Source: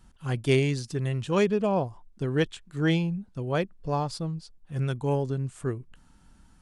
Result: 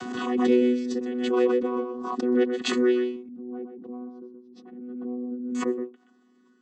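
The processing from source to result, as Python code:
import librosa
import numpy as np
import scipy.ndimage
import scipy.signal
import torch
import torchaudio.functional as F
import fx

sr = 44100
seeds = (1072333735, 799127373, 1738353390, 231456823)

y = fx.chord_vocoder(x, sr, chord='bare fifth', root=59)
y = fx.bandpass_q(y, sr, hz=160.0, q=1.5, at=(3.16, 5.55))
y = y + 10.0 ** (-6.5 / 20.0) * np.pad(y, (int(125 * sr / 1000.0), 0))[:len(y)]
y = fx.pre_swell(y, sr, db_per_s=36.0)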